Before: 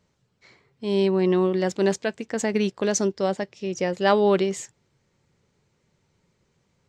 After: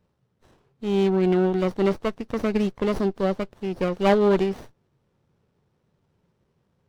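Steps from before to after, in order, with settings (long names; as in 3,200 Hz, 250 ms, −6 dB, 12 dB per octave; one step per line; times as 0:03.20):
hearing-aid frequency compression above 3,500 Hz 1.5 to 1
windowed peak hold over 17 samples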